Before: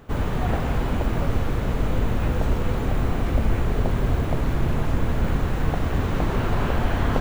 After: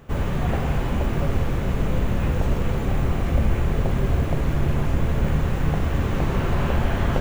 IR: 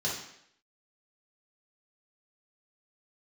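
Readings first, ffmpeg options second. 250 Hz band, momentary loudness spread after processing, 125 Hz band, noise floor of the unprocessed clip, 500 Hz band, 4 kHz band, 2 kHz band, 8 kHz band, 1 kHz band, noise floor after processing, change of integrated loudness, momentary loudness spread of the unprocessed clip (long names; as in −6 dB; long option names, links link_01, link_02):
+0.5 dB, 2 LU, +1.5 dB, −26 dBFS, 0.0 dB, 0.0 dB, 0.0 dB, +1.0 dB, −1.0 dB, −25 dBFS, +1.0 dB, 2 LU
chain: -filter_complex "[0:a]asplit=2[link_01][link_02];[1:a]atrim=start_sample=2205,lowpass=7100[link_03];[link_02][link_03]afir=irnorm=-1:irlink=0,volume=-15dB[link_04];[link_01][link_04]amix=inputs=2:normalize=0"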